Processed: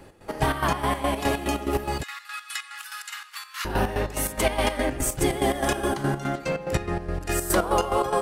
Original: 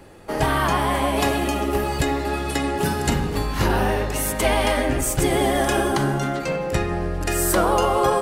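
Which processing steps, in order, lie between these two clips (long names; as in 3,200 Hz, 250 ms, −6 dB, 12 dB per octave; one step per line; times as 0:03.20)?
0:02.03–0:03.65: elliptic high-pass filter 1,200 Hz, stop band 70 dB
square-wave tremolo 4.8 Hz, depth 65%, duty 50%
level −2 dB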